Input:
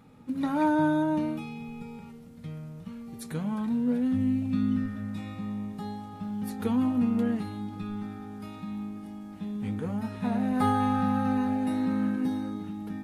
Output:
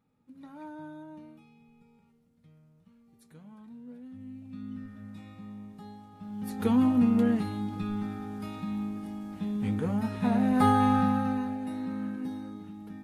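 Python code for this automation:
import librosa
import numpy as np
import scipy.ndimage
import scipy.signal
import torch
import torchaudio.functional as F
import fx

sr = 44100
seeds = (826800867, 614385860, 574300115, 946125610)

y = fx.gain(x, sr, db=fx.line((4.13, -19.5), (5.06, -9.5), (6.15, -9.5), (6.68, 2.5), (10.97, 2.5), (11.58, -7.0)))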